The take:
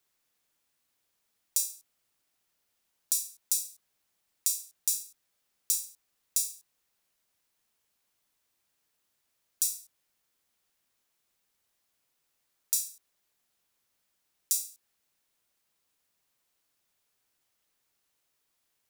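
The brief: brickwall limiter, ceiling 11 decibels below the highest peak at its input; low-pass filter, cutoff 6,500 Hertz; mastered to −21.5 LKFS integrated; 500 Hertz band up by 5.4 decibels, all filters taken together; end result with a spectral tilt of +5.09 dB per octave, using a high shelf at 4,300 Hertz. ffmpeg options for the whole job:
ffmpeg -i in.wav -af "lowpass=6500,equalizer=frequency=500:width_type=o:gain=6.5,highshelf=frequency=4300:gain=9,volume=13.5dB,alimiter=limit=-5.5dB:level=0:latency=1" out.wav

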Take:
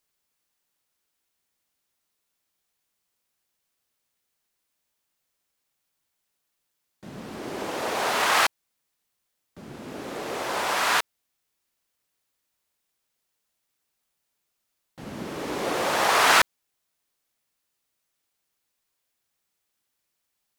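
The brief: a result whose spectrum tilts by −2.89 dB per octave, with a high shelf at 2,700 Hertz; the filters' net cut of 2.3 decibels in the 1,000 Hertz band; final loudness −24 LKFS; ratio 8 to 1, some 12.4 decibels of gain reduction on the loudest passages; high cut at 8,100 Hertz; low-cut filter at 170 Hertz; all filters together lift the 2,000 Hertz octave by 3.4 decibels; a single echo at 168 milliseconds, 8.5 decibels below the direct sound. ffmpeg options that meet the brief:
ffmpeg -i in.wav -af "highpass=170,lowpass=8100,equalizer=frequency=1000:width_type=o:gain=-4.5,equalizer=frequency=2000:width_type=o:gain=8.5,highshelf=frequency=2700:gain=-7,acompressor=threshold=-26dB:ratio=8,aecho=1:1:168:0.376,volume=6dB" out.wav

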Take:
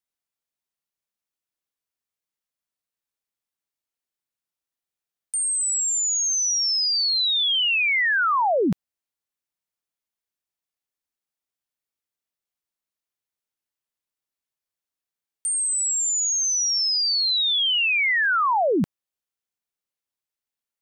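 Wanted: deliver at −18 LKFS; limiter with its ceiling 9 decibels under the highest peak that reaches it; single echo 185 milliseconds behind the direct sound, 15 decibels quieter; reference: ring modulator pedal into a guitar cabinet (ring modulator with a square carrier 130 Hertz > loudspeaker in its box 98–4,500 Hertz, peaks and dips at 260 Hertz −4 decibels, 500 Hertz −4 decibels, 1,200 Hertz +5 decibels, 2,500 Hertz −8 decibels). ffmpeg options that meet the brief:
ffmpeg -i in.wav -af "alimiter=level_in=2dB:limit=-24dB:level=0:latency=1,volume=-2dB,aecho=1:1:185:0.178,aeval=exprs='val(0)*sgn(sin(2*PI*130*n/s))':channel_layout=same,highpass=98,equalizer=frequency=260:width_type=q:width=4:gain=-4,equalizer=frequency=500:width_type=q:width=4:gain=-4,equalizer=frequency=1200:width_type=q:width=4:gain=5,equalizer=frequency=2500:width_type=q:width=4:gain=-8,lowpass=frequency=4500:width=0.5412,lowpass=frequency=4500:width=1.3066,volume=12dB" out.wav

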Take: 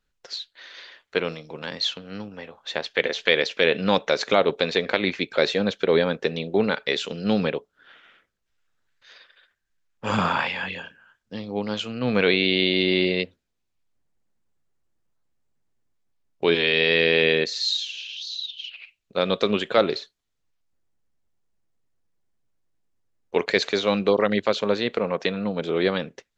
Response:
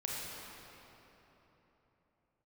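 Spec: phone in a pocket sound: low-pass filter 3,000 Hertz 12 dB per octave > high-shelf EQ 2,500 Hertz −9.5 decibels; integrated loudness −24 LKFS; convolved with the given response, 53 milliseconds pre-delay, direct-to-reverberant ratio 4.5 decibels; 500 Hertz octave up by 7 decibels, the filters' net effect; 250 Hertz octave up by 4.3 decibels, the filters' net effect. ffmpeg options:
-filter_complex "[0:a]equalizer=frequency=250:width_type=o:gain=3.5,equalizer=frequency=500:width_type=o:gain=7.5,asplit=2[link_01][link_02];[1:a]atrim=start_sample=2205,adelay=53[link_03];[link_02][link_03]afir=irnorm=-1:irlink=0,volume=-7.5dB[link_04];[link_01][link_04]amix=inputs=2:normalize=0,lowpass=3000,highshelf=frequency=2500:gain=-9.5,volume=-6dB"

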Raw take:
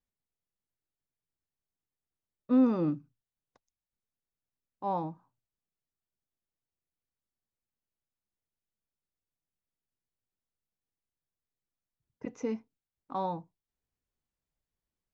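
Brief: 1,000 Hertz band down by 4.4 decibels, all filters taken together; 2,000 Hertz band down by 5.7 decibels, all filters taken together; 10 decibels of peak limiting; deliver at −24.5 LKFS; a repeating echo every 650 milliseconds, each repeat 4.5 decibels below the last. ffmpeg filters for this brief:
ffmpeg -i in.wav -af "equalizer=frequency=1000:width_type=o:gain=-4.5,equalizer=frequency=2000:width_type=o:gain=-6,alimiter=level_in=2dB:limit=-24dB:level=0:latency=1,volume=-2dB,aecho=1:1:650|1300|1950|2600|3250|3900|4550|5200|5850:0.596|0.357|0.214|0.129|0.0772|0.0463|0.0278|0.0167|0.01,volume=15.5dB" out.wav

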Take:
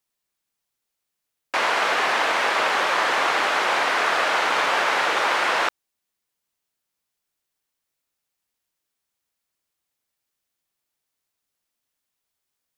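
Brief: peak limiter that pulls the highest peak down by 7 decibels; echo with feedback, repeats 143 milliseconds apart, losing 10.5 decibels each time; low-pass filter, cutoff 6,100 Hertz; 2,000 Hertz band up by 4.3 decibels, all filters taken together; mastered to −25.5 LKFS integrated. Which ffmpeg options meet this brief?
ffmpeg -i in.wav -af "lowpass=6100,equalizer=frequency=2000:width_type=o:gain=5.5,alimiter=limit=-12dB:level=0:latency=1,aecho=1:1:143|286|429:0.299|0.0896|0.0269,volume=-5.5dB" out.wav

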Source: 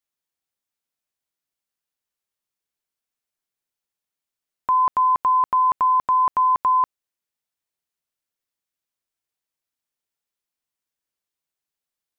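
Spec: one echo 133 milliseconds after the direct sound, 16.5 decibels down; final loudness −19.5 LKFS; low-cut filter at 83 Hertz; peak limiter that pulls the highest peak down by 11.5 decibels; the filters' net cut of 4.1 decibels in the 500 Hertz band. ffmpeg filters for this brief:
ffmpeg -i in.wav -af "highpass=83,equalizer=frequency=500:width_type=o:gain=-5.5,alimiter=level_in=2dB:limit=-24dB:level=0:latency=1,volume=-2dB,aecho=1:1:133:0.15,volume=11.5dB" out.wav

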